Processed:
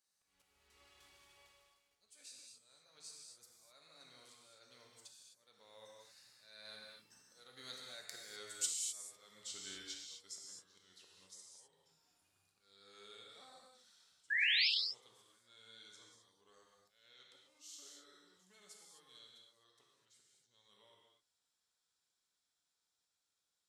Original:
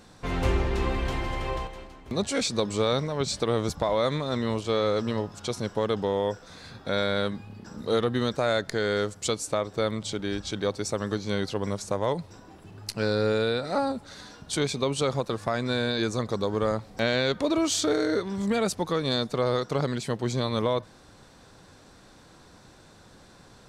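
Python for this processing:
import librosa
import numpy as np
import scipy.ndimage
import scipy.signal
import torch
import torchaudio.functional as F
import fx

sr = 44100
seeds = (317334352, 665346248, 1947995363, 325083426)

y = fx.doppler_pass(x, sr, speed_mps=25, closest_m=23.0, pass_at_s=8.68)
y = fx.auto_swell(y, sr, attack_ms=430.0)
y = librosa.effects.preemphasis(y, coef=0.97, zi=[0.0])
y = fx.spec_paint(y, sr, seeds[0], shape='rise', start_s=14.3, length_s=0.38, low_hz=1600.0, high_hz=5500.0, level_db=-31.0)
y = fx.rev_gated(y, sr, seeds[1], gate_ms=280, shape='flat', drr_db=-2.0)
y = y * 10.0 ** (-4.0 / 20.0)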